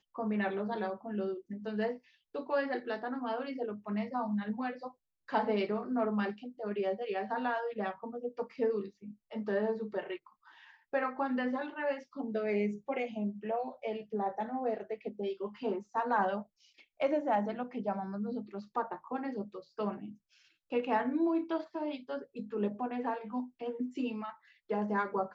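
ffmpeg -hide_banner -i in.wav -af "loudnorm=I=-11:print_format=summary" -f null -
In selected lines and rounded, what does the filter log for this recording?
Input Integrated:    -35.6 LUFS
Input True Peak:     -17.0 dBTP
Input LRA:             2.2 LU
Input Threshold:     -45.9 LUFS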